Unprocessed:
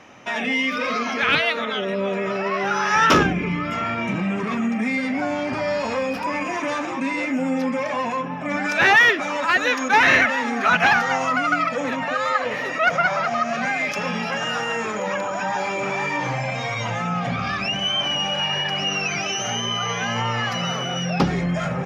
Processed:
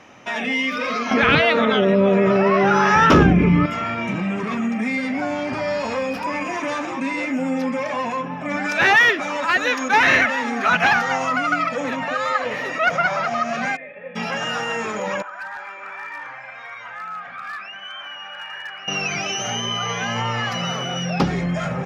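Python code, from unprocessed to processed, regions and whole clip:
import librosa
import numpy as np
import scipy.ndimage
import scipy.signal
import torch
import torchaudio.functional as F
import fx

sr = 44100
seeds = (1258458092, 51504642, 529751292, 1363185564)

y = fx.chain(x, sr, fx.tilt_eq(slope=-2.5),
    fx.env_flatten(amount_pct=50), at=(1.11, 3.66))
y = fx.envelope_flatten(y, sr, power=0.6, at=(13.75, 14.15), fade=0.02)
y = fx.formant_cascade(y, sr, vowel='e', at=(13.75, 14.15), fade=0.02)
y = fx.chain(y, sr, fx.bandpass_q(hz=1500.0, q=3.1),
    fx.overload_stage(gain_db=26.0), at=(15.22, 18.88))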